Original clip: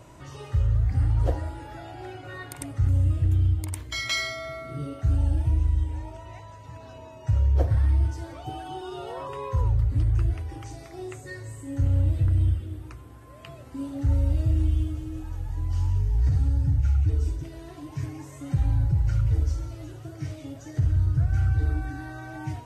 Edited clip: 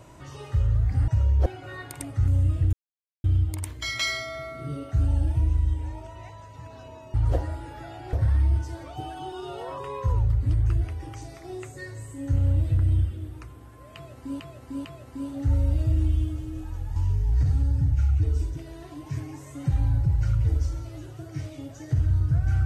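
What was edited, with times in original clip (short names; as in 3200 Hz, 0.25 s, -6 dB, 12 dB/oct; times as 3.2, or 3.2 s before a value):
1.08–2.07 swap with 7.24–7.62
3.34 insert silence 0.51 s
13.44–13.89 loop, 3 plays
15.55–15.82 cut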